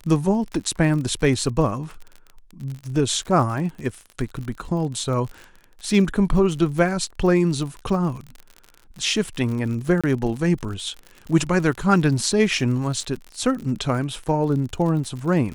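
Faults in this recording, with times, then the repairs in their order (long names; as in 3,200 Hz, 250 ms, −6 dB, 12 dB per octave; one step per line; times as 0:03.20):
surface crackle 53 per second −30 dBFS
0:10.01–0:10.04: drop-out 26 ms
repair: click removal
repair the gap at 0:10.01, 26 ms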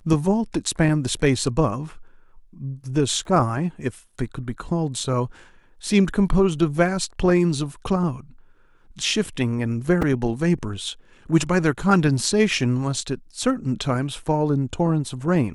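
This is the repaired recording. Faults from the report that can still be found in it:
none of them is left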